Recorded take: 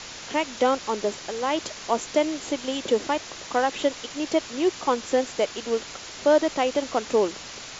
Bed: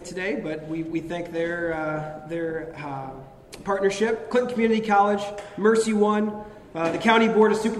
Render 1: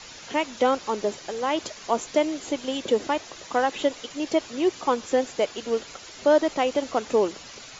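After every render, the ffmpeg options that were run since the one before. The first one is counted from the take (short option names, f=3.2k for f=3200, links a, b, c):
-af "afftdn=nr=8:nf=-40"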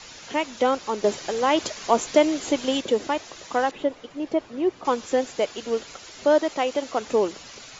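-filter_complex "[0:a]asettb=1/sr,asplit=3[a][b][c];[a]atrim=end=1.044[d];[b]atrim=start=1.04:end=2.81,asetpts=PTS-STARTPTS,afade=t=in:d=0.004:c=qsin,afade=t=out:st=1.766:d=0.004:c=qsin,acontrast=21[e];[c]atrim=start=2.806[f];[d][e]acrossfade=d=0.004:c1=hsin:c2=qsin[g];[g][f]acrossfade=d=0.004:c1=qsin:c2=hsin,asettb=1/sr,asplit=3[h][i][j];[h]atrim=end=3.714[k];[i]atrim=start=3.71:end=4.85,asetpts=PTS-STARTPTS,afade=t=in:d=0.004:c=qsin,afade=t=out:st=1.136:d=0.004:c=qsin,lowpass=f=1.1k:p=1[l];[j]atrim=start=4.846[m];[k][l]acrossfade=d=0.004:c1=hsin:c2=qsin[n];[n][m]acrossfade=d=0.004:c1=qsin:c2=hsin,asettb=1/sr,asplit=3[o][p][q];[o]atrim=end=6.394[r];[p]atrim=start=6.39:end=7.01,asetpts=PTS-STARTPTS,afade=t=in:d=0.004:c=qsin,afade=t=out:st=0.616:d=0.004:c=qsin,lowshelf=f=170:g=-8.5[s];[q]atrim=start=7.006[t];[r][s]acrossfade=d=0.004:c1=hsin:c2=qsin[u];[u][t]acrossfade=d=0.004:c1=qsin:c2=hsin"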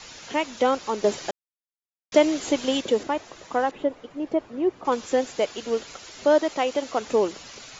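-filter_complex "[0:a]asettb=1/sr,asplit=3[a][b][c];[a]atrim=end=3.034[d];[b]atrim=start=3.03:end=4.92,asetpts=PTS-STARTPTS,afade=t=in:d=0.004:c=qsin,afade=t=out:st=1.886:d=0.004:c=qsin,equalizer=f=5.2k:w=0.46:g=-7[e];[c]atrim=start=4.916[f];[d][e]acrossfade=d=0.004:c1=hsin:c2=qsin[g];[g][f]acrossfade=d=0.004:c1=qsin:c2=hsin,asplit=3[h][i][j];[h]atrim=end=1.31,asetpts=PTS-STARTPTS,afade=t=out:st=1.306:d=0.004:c=hsin[k];[i]atrim=start=1.31:end=2.12,asetpts=PTS-STARTPTS,volume=0[l];[j]atrim=start=2.12,asetpts=PTS-STARTPTS,afade=t=in:d=0.004:c=hsin[m];[k][l][m]concat=n=3:v=0:a=1"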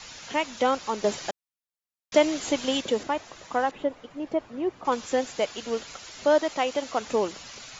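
-af "equalizer=f=380:t=o:w=1.1:g=-5"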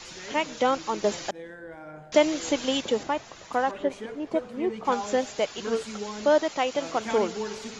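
-filter_complex "[1:a]volume=-15.5dB[a];[0:a][a]amix=inputs=2:normalize=0"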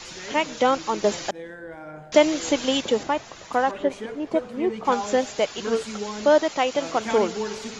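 -af "volume=3.5dB"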